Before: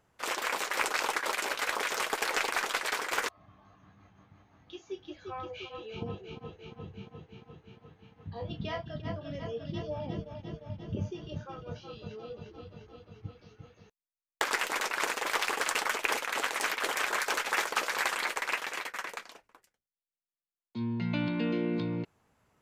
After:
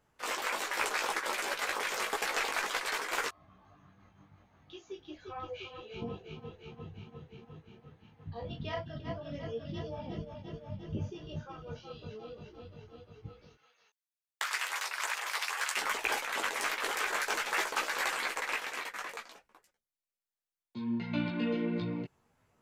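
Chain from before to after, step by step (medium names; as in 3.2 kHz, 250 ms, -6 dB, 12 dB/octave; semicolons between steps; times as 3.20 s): 13.55–15.77 s: high-pass 1.1 kHz 12 dB/octave; chorus voices 6, 0.55 Hz, delay 17 ms, depth 4.9 ms; trim +1 dB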